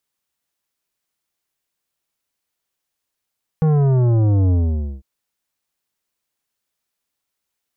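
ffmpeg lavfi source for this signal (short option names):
-f lavfi -i "aevalsrc='0.211*clip((1.4-t)/0.51,0,1)*tanh(3.76*sin(2*PI*160*1.4/log(65/160)*(exp(log(65/160)*t/1.4)-1)))/tanh(3.76)':d=1.4:s=44100"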